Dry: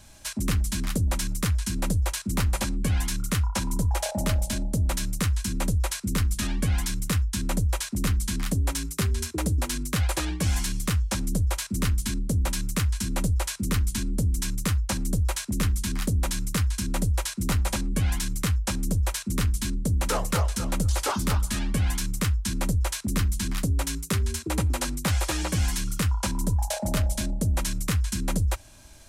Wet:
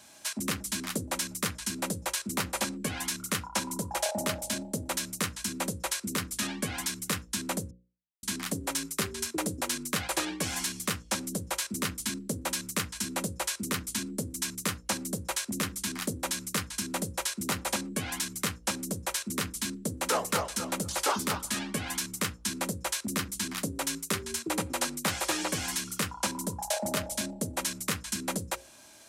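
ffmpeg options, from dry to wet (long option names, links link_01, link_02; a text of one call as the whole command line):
ffmpeg -i in.wav -filter_complex "[0:a]asplit=3[link_01][link_02][link_03];[link_01]atrim=end=7.71,asetpts=PTS-STARTPTS,afade=type=out:start_time=7.706:duration=0.004:curve=hsin[link_04];[link_02]atrim=start=7.71:end=8.23,asetpts=PTS-STARTPTS,volume=0[link_05];[link_03]atrim=start=8.23,asetpts=PTS-STARTPTS,afade=type=in:duration=0.004:curve=hsin[link_06];[link_04][link_05][link_06]concat=n=3:v=0:a=1,highpass=240,bandreject=frequency=60:width_type=h:width=6,bandreject=frequency=120:width_type=h:width=6,bandreject=frequency=180:width_type=h:width=6,bandreject=frequency=240:width_type=h:width=6,bandreject=frequency=300:width_type=h:width=6,bandreject=frequency=360:width_type=h:width=6,bandreject=frequency=420:width_type=h:width=6,bandreject=frequency=480:width_type=h:width=6,bandreject=frequency=540:width_type=h:width=6" out.wav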